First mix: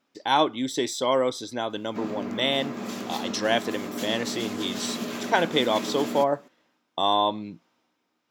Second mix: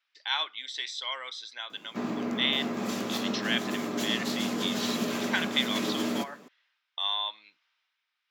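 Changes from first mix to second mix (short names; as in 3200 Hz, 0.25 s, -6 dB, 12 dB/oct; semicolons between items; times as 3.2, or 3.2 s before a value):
speech: add Butterworth band-pass 2700 Hz, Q 0.89; background: send +9.5 dB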